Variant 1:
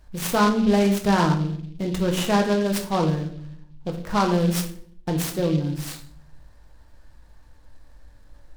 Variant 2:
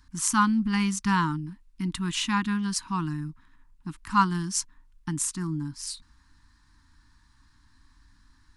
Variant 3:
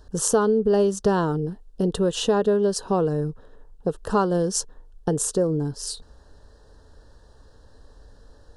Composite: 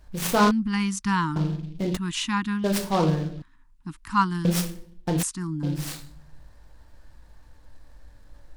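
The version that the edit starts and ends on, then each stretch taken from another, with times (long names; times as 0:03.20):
1
0:00.51–0:01.36: punch in from 2
0:01.97–0:02.64: punch in from 2
0:03.42–0:04.45: punch in from 2
0:05.23–0:05.63: punch in from 2
not used: 3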